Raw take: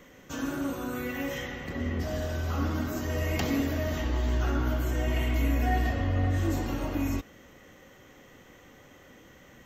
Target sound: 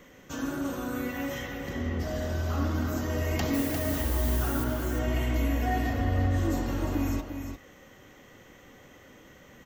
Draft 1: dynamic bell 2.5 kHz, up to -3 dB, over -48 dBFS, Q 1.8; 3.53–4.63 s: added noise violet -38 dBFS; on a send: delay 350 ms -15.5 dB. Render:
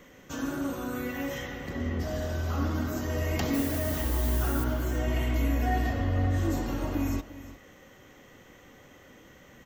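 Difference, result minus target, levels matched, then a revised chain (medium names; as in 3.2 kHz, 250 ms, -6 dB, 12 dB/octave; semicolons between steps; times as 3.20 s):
echo-to-direct -8 dB
dynamic bell 2.5 kHz, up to -3 dB, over -48 dBFS, Q 1.8; 3.53–4.63 s: added noise violet -38 dBFS; on a send: delay 350 ms -7.5 dB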